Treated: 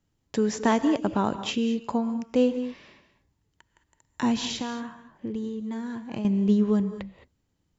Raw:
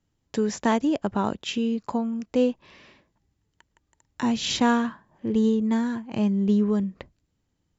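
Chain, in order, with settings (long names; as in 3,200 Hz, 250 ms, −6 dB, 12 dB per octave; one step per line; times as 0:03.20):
0:04.37–0:06.25: downward compressor, threshold −30 dBFS, peak gain reduction 13.5 dB
reverb whose tail is shaped and stops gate 240 ms rising, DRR 11 dB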